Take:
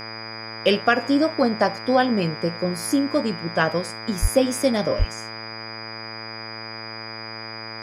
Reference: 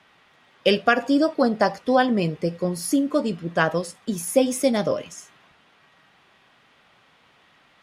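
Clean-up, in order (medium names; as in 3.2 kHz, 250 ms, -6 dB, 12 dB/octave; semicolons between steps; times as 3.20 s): de-hum 111.4 Hz, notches 22; band-stop 4.9 kHz, Q 30; de-plosive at 4.21/4.98 s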